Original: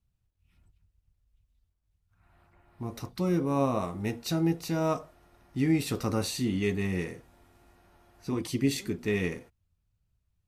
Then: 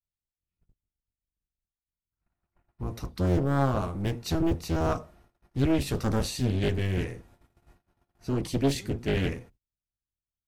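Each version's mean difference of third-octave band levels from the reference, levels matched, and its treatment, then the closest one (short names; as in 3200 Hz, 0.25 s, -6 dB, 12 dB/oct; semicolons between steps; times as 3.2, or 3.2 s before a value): 4.0 dB: octaver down 1 oct, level +2 dB; gate -55 dBFS, range -26 dB; Doppler distortion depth 0.65 ms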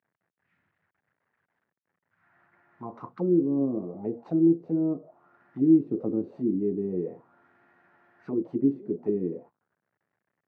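13.0 dB: CVSD 64 kbps; HPF 140 Hz 24 dB/oct; envelope low-pass 340–1800 Hz down, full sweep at -26 dBFS; gain -3.5 dB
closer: first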